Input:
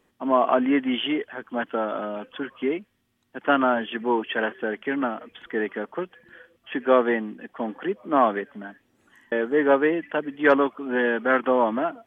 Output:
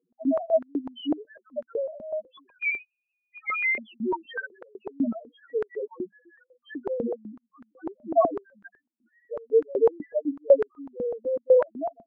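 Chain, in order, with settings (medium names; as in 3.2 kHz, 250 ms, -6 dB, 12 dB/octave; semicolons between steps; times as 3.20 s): loudest bins only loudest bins 1; 2.49–3.78 s: frequency inversion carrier 2.7 kHz; step-sequenced high-pass 8 Hz 230–1500 Hz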